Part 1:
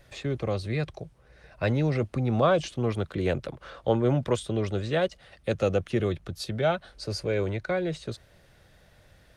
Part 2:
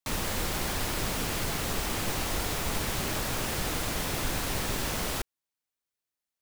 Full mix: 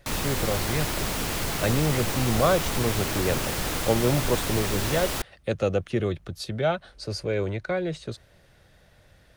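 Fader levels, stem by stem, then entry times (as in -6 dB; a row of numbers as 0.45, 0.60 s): +0.5, +2.5 dB; 0.00, 0.00 s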